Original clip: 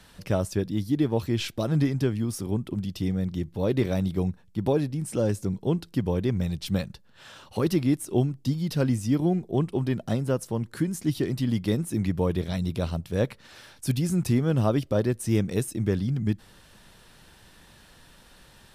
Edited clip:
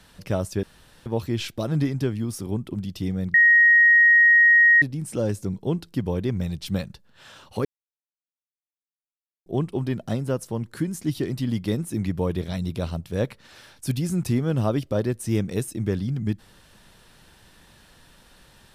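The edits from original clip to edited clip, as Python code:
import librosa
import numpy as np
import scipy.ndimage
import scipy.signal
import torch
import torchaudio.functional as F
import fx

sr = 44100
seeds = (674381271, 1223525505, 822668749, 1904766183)

y = fx.edit(x, sr, fx.room_tone_fill(start_s=0.63, length_s=0.43),
    fx.bleep(start_s=3.34, length_s=1.48, hz=1880.0, db=-11.5),
    fx.silence(start_s=7.65, length_s=1.81), tone=tone)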